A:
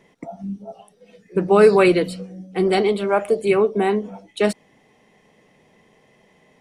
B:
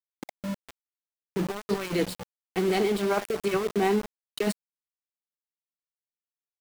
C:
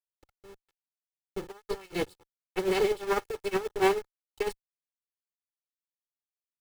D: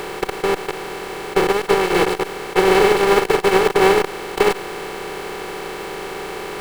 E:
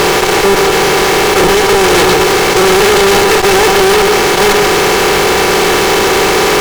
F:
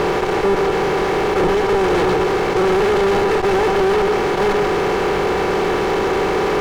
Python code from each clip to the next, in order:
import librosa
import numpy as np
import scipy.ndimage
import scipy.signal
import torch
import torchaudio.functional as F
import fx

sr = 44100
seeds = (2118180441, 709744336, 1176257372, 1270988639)

y1 = fx.peak_eq(x, sr, hz=550.0, db=-4.5, octaves=0.42)
y1 = fx.over_compress(y1, sr, threshold_db=-19.0, ratio=-0.5)
y1 = np.where(np.abs(y1) >= 10.0 ** (-25.0 / 20.0), y1, 0.0)
y1 = y1 * 10.0 ** (-5.5 / 20.0)
y2 = fx.lower_of_two(y1, sr, delay_ms=2.3)
y2 = fx.upward_expand(y2, sr, threshold_db=-43.0, expansion=2.5)
y2 = y2 * 10.0 ** (2.5 / 20.0)
y3 = fx.bin_compress(y2, sr, power=0.2)
y3 = y3 * 10.0 ** (6.5 / 20.0)
y4 = fx.high_shelf_res(y3, sr, hz=7700.0, db=-7.0, q=3.0)
y4 = y4 + 10.0 ** (-13.0 / 20.0) * np.pad(y4, (int(138 * sr / 1000.0), 0))[:len(y4)]
y4 = fx.fuzz(y4, sr, gain_db=37.0, gate_db=-37.0)
y4 = y4 * 10.0 ** (6.5 / 20.0)
y5 = fx.lowpass(y4, sr, hz=1100.0, slope=6)
y5 = y5 * 10.0 ** (-6.0 / 20.0)